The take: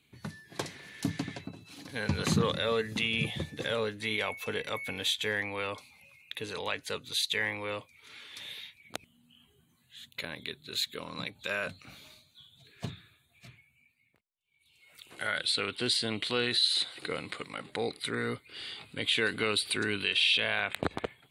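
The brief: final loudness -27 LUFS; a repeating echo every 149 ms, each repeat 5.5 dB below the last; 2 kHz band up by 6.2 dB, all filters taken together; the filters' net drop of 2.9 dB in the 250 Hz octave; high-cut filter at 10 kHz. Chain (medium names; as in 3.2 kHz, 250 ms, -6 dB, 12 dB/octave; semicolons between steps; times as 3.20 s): low-pass 10 kHz; peaking EQ 250 Hz -4 dB; peaking EQ 2 kHz +8 dB; feedback delay 149 ms, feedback 53%, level -5.5 dB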